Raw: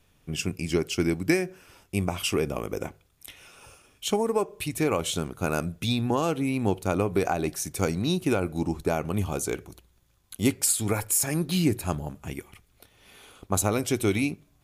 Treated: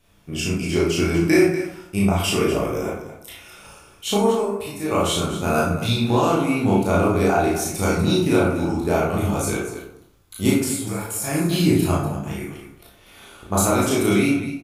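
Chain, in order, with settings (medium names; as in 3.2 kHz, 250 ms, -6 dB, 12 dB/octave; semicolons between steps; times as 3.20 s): 4.35–4.91 s: feedback comb 100 Hz, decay 0.27 s, harmonics all, mix 80%; 10.50–11.24 s: compression 2.5:1, threshold -34 dBFS, peak gain reduction 10 dB; loudspeakers at several distances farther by 12 m -2 dB, 83 m -11 dB; reverberation RT60 0.70 s, pre-delay 13 ms, DRR -3.5 dB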